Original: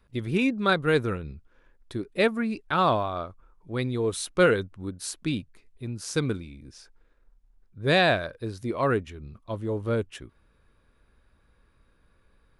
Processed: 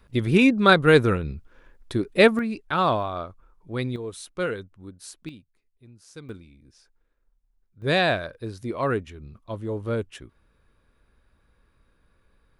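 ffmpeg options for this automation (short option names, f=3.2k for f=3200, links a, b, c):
-af "asetnsamples=n=441:p=0,asendcmd='2.39 volume volume 0.5dB;3.96 volume volume -7.5dB;5.29 volume volume -16dB;6.29 volume volume -8.5dB;7.82 volume volume -0.5dB',volume=7dB"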